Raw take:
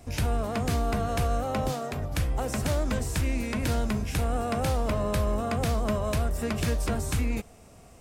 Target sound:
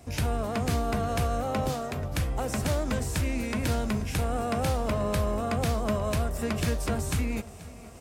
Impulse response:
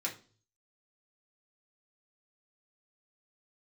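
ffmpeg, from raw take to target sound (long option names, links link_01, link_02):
-af "highpass=50,areverse,acompressor=mode=upward:threshold=-42dB:ratio=2.5,areverse,aecho=1:1:484|968|1452|1936:0.112|0.0539|0.0259|0.0124"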